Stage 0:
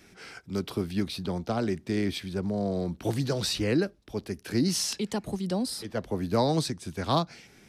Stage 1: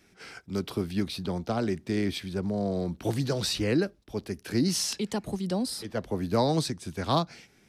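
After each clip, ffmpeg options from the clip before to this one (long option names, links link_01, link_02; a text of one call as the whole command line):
ffmpeg -i in.wav -af "agate=range=-6dB:threshold=-49dB:ratio=16:detection=peak" out.wav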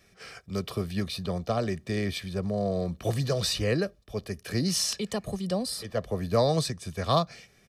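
ffmpeg -i in.wav -af "aecho=1:1:1.7:0.58" out.wav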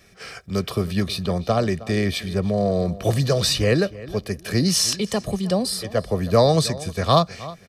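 ffmpeg -i in.wav -filter_complex "[0:a]asplit=2[link_01][link_02];[link_02]adelay=315,lowpass=frequency=3400:poles=1,volume=-17.5dB,asplit=2[link_03][link_04];[link_04]adelay=315,lowpass=frequency=3400:poles=1,volume=0.26[link_05];[link_01][link_03][link_05]amix=inputs=3:normalize=0,volume=7.5dB" out.wav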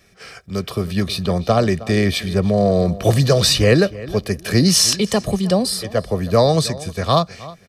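ffmpeg -i in.wav -af "dynaudnorm=framelen=390:gausssize=5:maxgain=11.5dB,volume=-1dB" out.wav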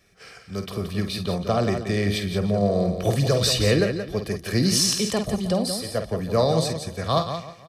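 ffmpeg -i in.wav -af "aecho=1:1:49.56|174.9:0.355|0.398,volume=-7dB" out.wav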